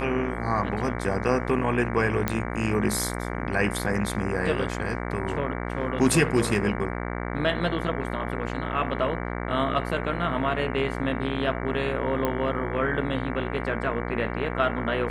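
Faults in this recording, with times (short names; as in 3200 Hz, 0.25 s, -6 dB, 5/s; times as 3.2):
buzz 60 Hz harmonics 38 -31 dBFS
2.28 pop -9 dBFS
12.25 pop -12 dBFS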